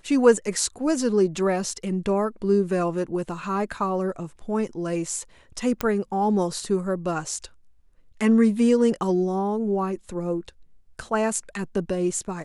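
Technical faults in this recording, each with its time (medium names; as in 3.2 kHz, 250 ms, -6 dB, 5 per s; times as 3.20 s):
5.81 s: pop -10 dBFS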